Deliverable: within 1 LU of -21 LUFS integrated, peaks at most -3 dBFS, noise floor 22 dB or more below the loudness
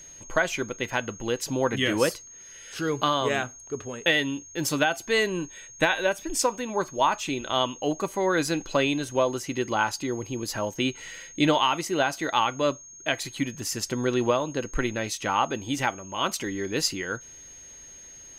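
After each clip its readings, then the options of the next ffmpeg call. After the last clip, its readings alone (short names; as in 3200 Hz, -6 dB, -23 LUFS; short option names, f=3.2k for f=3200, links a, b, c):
steady tone 6500 Hz; tone level -44 dBFS; loudness -26.5 LUFS; peak -9.0 dBFS; loudness target -21.0 LUFS
-> -af "bandreject=f=6.5k:w=30"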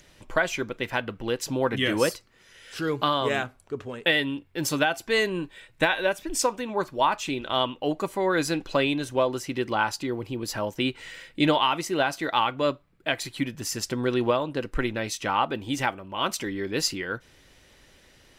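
steady tone none; loudness -26.5 LUFS; peak -9.0 dBFS; loudness target -21.0 LUFS
-> -af "volume=5.5dB"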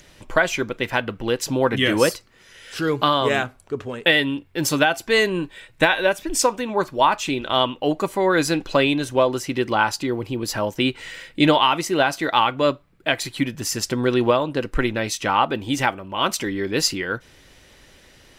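loudness -21.0 LUFS; peak -3.5 dBFS; noise floor -52 dBFS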